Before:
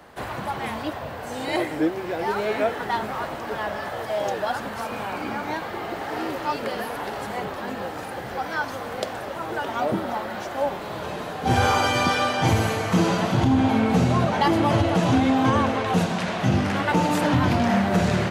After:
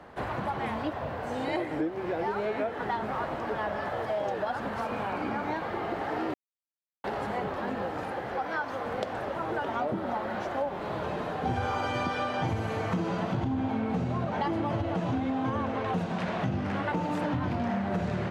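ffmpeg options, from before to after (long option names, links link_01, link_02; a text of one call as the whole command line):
ffmpeg -i in.wav -filter_complex "[0:a]asettb=1/sr,asplit=3[link_01][link_02][link_03];[link_01]atrim=end=8.124[link_04];[link_02]atrim=start=8.12:end=8.86,asetpts=PTS-STARTPTS,afade=type=in:duration=0.004:curve=qsin,afade=type=out:start_time=0.736:duration=0.004:curve=qsin,bass=frequency=250:gain=-6,treble=frequency=4000:gain=-2[link_05];[link_03]atrim=start=8.856[link_06];[link_04][link_05]acrossfade=duration=0.004:curve1=hsin:curve2=qsin[link_07];[link_07][link_06]acrossfade=duration=0.004:curve1=qsin:curve2=hsin,asplit=3[link_08][link_09][link_10];[link_08]atrim=end=6.34,asetpts=PTS-STARTPTS,afade=type=out:start_time=6.336:duration=0.004:curve=hsin[link_11];[link_09]atrim=start=6.34:end=7.04,asetpts=PTS-STARTPTS,volume=0[link_12];[link_10]atrim=start=7.04,asetpts=PTS-STARTPTS,afade=type=in:duration=0.004:curve=hsin[link_13];[link_11][link_12][link_13]concat=n=3:v=0:a=1,lowpass=frequency=1800:poles=1,acompressor=threshold=-27dB:ratio=6" out.wav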